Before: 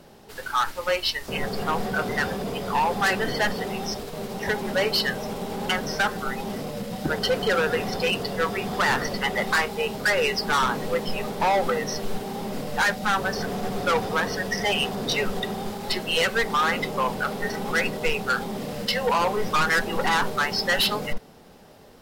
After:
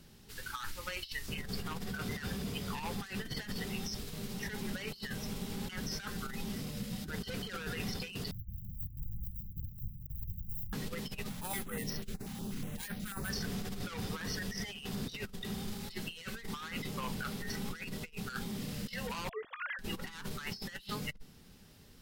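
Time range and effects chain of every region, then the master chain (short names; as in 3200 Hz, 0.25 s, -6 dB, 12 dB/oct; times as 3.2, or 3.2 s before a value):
8.31–10.73 decimation with a swept rate 25× 1.7 Hz + inverse Chebyshev band-stop 530–6100 Hz, stop band 70 dB
11.29–13.3 air absorption 66 m + careless resampling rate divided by 4×, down none, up hold + stepped notch 8.2 Hz 400–7200 Hz
19.29–19.79 sine-wave speech + upward expander, over -28 dBFS
whole clip: passive tone stack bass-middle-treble 6-0-2; negative-ratio compressor -47 dBFS, ratio -0.5; gain +8.5 dB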